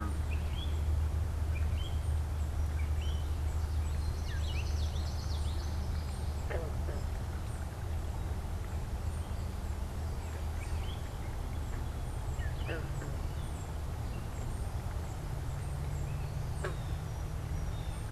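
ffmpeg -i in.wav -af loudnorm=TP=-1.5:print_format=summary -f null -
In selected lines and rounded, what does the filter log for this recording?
Input Integrated:    -37.7 LUFS
Input True Peak:     -22.0 dBTP
Input LRA:             4.1 LU
Input Threshold:     -47.7 LUFS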